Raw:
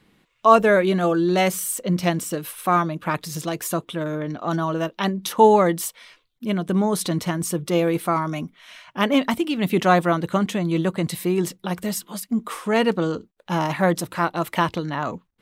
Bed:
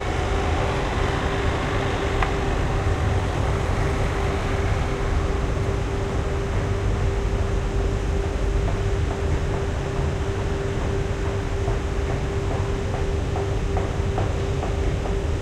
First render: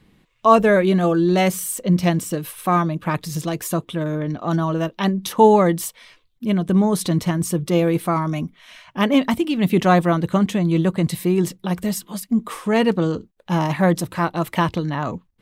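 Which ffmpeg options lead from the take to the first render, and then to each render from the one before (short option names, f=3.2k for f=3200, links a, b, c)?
-af "lowshelf=f=180:g=10,bandreject=f=1.4k:w=17"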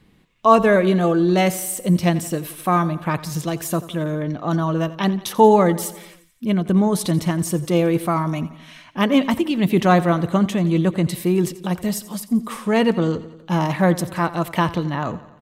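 -af "aecho=1:1:87|174|261|348|435|522:0.141|0.0833|0.0492|0.029|0.0171|0.0101"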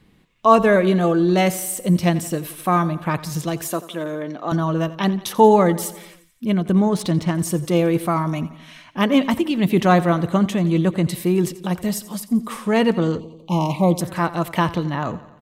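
-filter_complex "[0:a]asettb=1/sr,asplit=3[a][b][c];[a]atrim=end=3.684[d];[b]atrim=start=3.68:end=4.52,asetpts=PTS-STARTPTS,afade=t=in:d=0.004:c=qsin,afade=t=out:st=0.836:d=0.004:c=qsin,highpass=290[e];[c]atrim=start=4.516[f];[d][e]acrossfade=d=0.004:c1=hsin:c2=qsin[g];[g][f]acrossfade=d=0.004:c1=qsin:c2=hsin,asettb=1/sr,asplit=3[h][i][j];[h]atrim=end=6.894[k];[i]atrim=start=6.89:end=7.35,asetpts=PTS-STARTPTS,afade=t=in:d=0.004:c=qsin,afade=t=out:st=0.456:d=0.004:c=qsin,adynamicsmooth=sensitivity=4.5:basefreq=3.7k[l];[j]atrim=start=7.346[m];[k][l]acrossfade=d=0.004:c1=hsin:c2=qsin[n];[n][m]acrossfade=d=0.004:c1=qsin:c2=hsin,asettb=1/sr,asplit=3[o][p][q];[o]atrim=end=13.204[r];[p]atrim=start=13.2:end=14.01,asetpts=PTS-STARTPTS,afade=t=in:d=0.004:c=qsin,afade=t=out:st=0.806:d=0.004:c=qsin,asuperstop=centerf=1600:order=8:qfactor=1.4[s];[q]atrim=start=14.006[t];[r][s]acrossfade=d=0.004:c1=hsin:c2=qsin[u];[u][t]acrossfade=d=0.004:c1=qsin:c2=hsin"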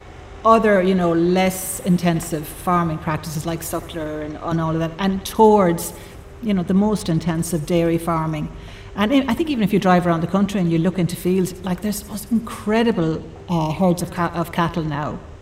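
-filter_complex "[1:a]volume=-15dB[a];[0:a][a]amix=inputs=2:normalize=0"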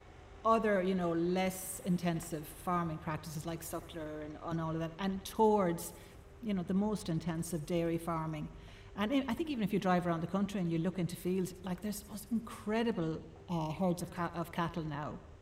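-af "volume=-16dB"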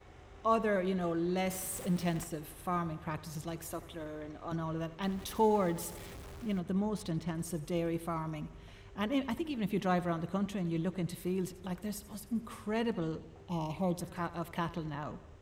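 -filter_complex "[0:a]asettb=1/sr,asplit=3[a][b][c];[a]atrim=end=1.504[d];[b]atrim=start=1.5:end=2.24,asetpts=PTS-STARTPTS,afade=t=in:d=0.004:c=qsin,afade=t=out:st=0.736:d=0.004:c=qsin,aeval=exprs='val(0)+0.5*0.00794*sgn(val(0))':c=same[e];[c]atrim=start=2.236[f];[d][e]acrossfade=d=0.004:c1=hsin:c2=qsin[g];[g][f]acrossfade=d=0.004:c1=qsin:c2=hsin,asettb=1/sr,asplit=3[h][i][j];[h]atrim=end=5.024[k];[i]atrim=start=5.02:end=6.6,asetpts=PTS-STARTPTS,afade=t=in:d=0.004:c=qsin,afade=t=out:st=1.576:d=0.004:c=qsin,aeval=exprs='val(0)+0.5*0.00562*sgn(val(0))':c=same[l];[j]atrim=start=6.596[m];[k][l]acrossfade=d=0.004:c1=hsin:c2=qsin[n];[n][m]acrossfade=d=0.004:c1=qsin:c2=hsin"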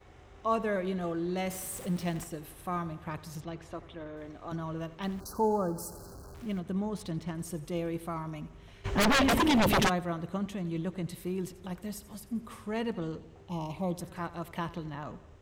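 -filter_complex "[0:a]asettb=1/sr,asplit=3[a][b][c];[a]atrim=end=3.404[d];[b]atrim=start=3.4:end=4.17,asetpts=PTS-STARTPTS,afade=t=in:d=0.004:c=qsin,afade=t=out:st=0.766:d=0.004:c=qsin,lowpass=3.7k[e];[c]atrim=start=4.166[f];[d][e]acrossfade=d=0.004:c1=hsin:c2=qsin[g];[g][f]acrossfade=d=0.004:c1=qsin:c2=hsin,asettb=1/sr,asplit=3[h][i][j];[h]atrim=end=5.204[k];[i]atrim=start=5.2:end=6.35,asetpts=PTS-STARTPTS,afade=t=in:d=0.004:c=qsin,afade=t=out:st=1.146:d=0.004:c=qsin,asuperstop=centerf=2600:order=20:qfactor=0.99[l];[j]atrim=start=6.346[m];[k][l]acrossfade=d=0.004:c1=hsin:c2=qsin[n];[n][m]acrossfade=d=0.004:c1=qsin:c2=hsin,asplit=3[o][p][q];[o]afade=t=out:st=8.84:d=0.02[r];[p]aeval=exprs='0.0944*sin(PI/2*6.31*val(0)/0.0944)':c=same,afade=t=in:st=8.84:d=0.02,afade=t=out:st=9.88:d=0.02[s];[q]afade=t=in:st=9.88:d=0.02[t];[r][s][t]amix=inputs=3:normalize=0"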